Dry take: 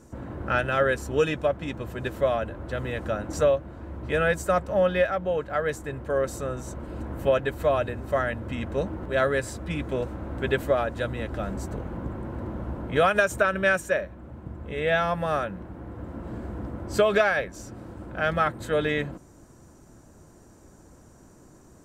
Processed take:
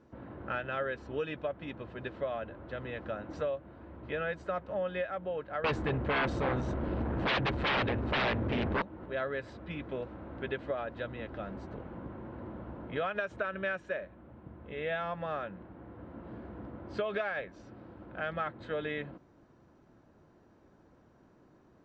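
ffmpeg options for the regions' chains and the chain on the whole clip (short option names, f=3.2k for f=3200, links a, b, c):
-filter_complex "[0:a]asettb=1/sr,asplit=3[a][b][c];[a]atrim=end=5.644[d];[b]atrim=start=5.64:end=8.82,asetpts=PTS-STARTPTS,afade=t=in:d=0.004:c=qsin,afade=t=out:st=3.176:d=0.004:c=qsin,lowshelf=f=230:g=7,aeval=exprs='0.335*sin(PI/2*6.31*val(0)/0.335)':c=same[e];[c]atrim=start=8.816[f];[d][e]acrossfade=d=0.004:c1=hsin:c2=qsin[g];[g][f]acrossfade=d=0.004:c1=qsin:c2=hsin,acompressor=threshold=-24dB:ratio=2.5,lowpass=f=3.9k:w=0.5412,lowpass=f=3.9k:w=1.3066,lowshelf=f=83:g=-11.5,volume=-7.5dB"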